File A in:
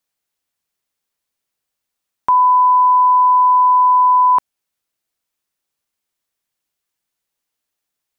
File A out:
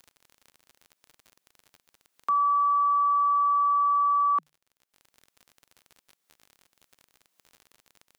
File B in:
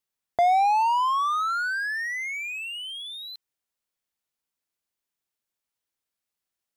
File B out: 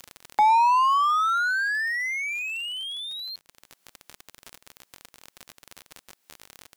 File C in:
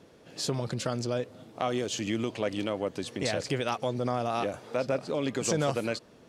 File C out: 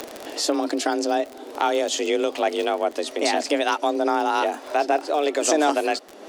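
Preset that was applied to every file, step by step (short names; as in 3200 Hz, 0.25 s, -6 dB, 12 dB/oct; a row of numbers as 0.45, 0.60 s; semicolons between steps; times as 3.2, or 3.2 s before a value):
frequency shift +150 Hz; crackle 42/s -37 dBFS; upward compressor, threshold -34 dBFS; match loudness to -23 LUFS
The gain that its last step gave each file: -11.5, +1.5, +8.0 dB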